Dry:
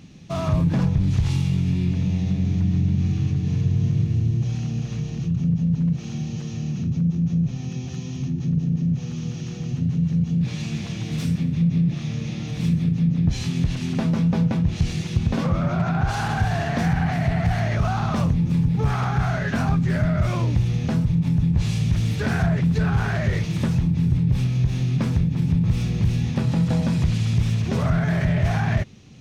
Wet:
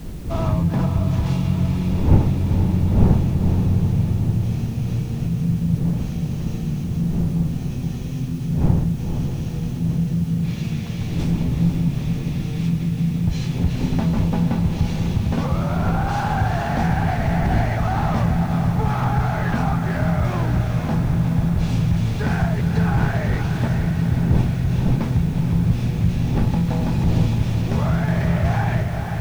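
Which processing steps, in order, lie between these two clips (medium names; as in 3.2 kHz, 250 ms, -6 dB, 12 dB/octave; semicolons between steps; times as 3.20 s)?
wind noise 150 Hz -27 dBFS; on a send: echo that smears into a reverb 719 ms, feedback 65%, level -12 dB; on the sum: dynamic bell 870 Hz, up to +7 dB, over -48 dBFS, Q 4.7; echo that smears into a reverb 476 ms, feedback 47%, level -6 dB; in parallel at -6 dB: word length cut 6-bit, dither triangular; on the sum: treble shelf 4.7 kHz -6.5 dB; trim -4 dB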